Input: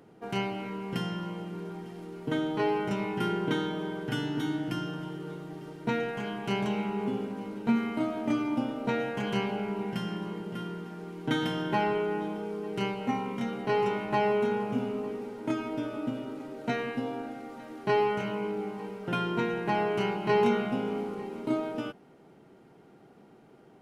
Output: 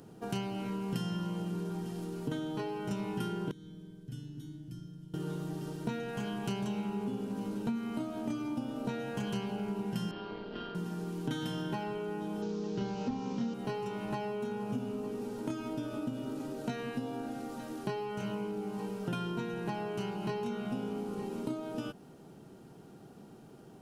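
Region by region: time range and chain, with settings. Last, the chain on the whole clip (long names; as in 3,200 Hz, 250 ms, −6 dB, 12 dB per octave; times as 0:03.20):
0:03.51–0:05.14: guitar amp tone stack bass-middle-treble 10-0-1 + notch filter 2,800 Hz, Q 28
0:10.11–0:10.75: Chebyshev band-pass filter 240–4,500 Hz, order 4 + amplitude modulation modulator 200 Hz, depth 40% + double-tracking delay 50 ms −5.5 dB
0:12.42–0:13.54: linear delta modulator 32 kbit/s, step −44 dBFS + parametric band 310 Hz +4.5 dB 2.4 octaves + flutter between parallel walls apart 5.9 metres, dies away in 0.21 s
whole clip: parametric band 2,100 Hz −8.5 dB 0.23 octaves; downward compressor 6 to 1, threshold −36 dBFS; bass and treble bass +7 dB, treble +10 dB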